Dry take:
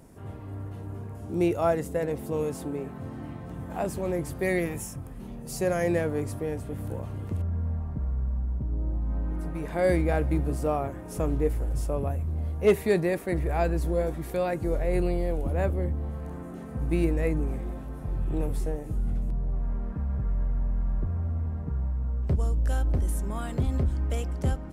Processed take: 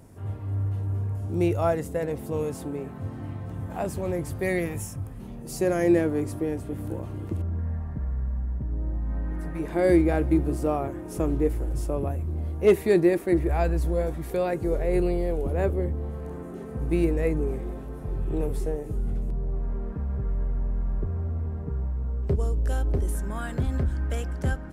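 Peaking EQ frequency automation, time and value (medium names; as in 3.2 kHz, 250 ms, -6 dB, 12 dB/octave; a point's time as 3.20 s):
peaking EQ +11 dB 0.29 oct
98 Hz
from 5.42 s 330 Hz
from 7.59 s 1.8 kHz
from 9.59 s 340 Hz
from 13.49 s 74 Hz
from 14.31 s 410 Hz
from 23.15 s 1.6 kHz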